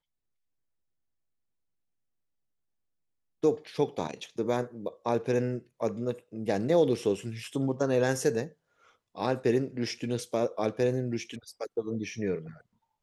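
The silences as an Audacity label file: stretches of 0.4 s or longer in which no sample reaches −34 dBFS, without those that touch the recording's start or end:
8.460000	9.180000	silence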